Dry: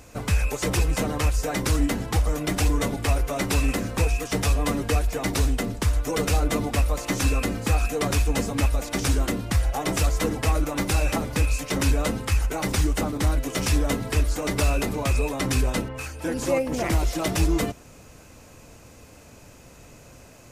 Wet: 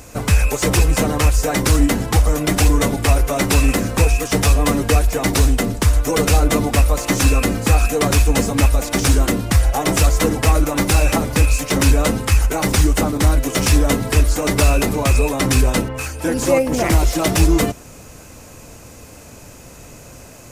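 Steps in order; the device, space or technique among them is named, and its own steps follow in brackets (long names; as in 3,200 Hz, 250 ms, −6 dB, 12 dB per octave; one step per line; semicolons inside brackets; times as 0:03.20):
exciter from parts (in parallel at −4.5 dB: high-pass filter 4,900 Hz 12 dB per octave + soft clipping −38.5 dBFS, distortion −6 dB)
on the sum: level +8 dB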